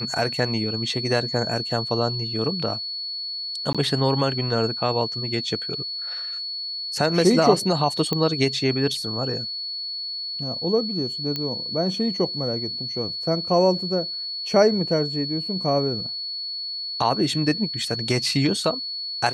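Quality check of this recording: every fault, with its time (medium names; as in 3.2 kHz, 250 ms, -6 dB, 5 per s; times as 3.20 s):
whine 4.4 kHz -28 dBFS
3.73–3.75 s: dropout 16 ms
8.13 s: pop -10 dBFS
11.36 s: pop -13 dBFS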